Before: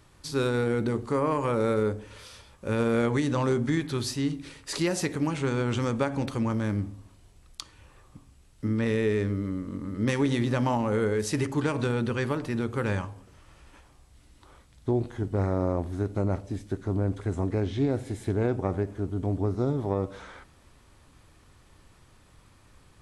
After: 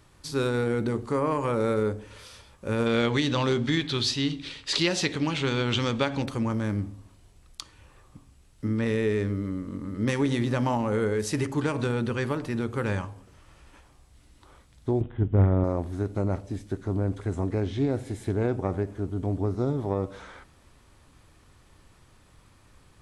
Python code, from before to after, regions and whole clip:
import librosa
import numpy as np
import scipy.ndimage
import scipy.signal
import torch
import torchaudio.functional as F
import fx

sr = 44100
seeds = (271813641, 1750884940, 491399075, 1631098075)

y = fx.chain(x, sr, fx.lowpass(hz=7200.0, slope=12),
    fx.peak_eq(hz=3500.0, db=13.0, octaves=1.2), at=(2.86, 6.22))
y = fx.chain(y, sr, fx.low_shelf(hz=240.0, db=10.5),
    fx.resample_bad(factor=6, down='none', up='filtered'),
    fx.upward_expand(threshold_db=-28.0, expansion=1.5), at=(15.01, 15.64))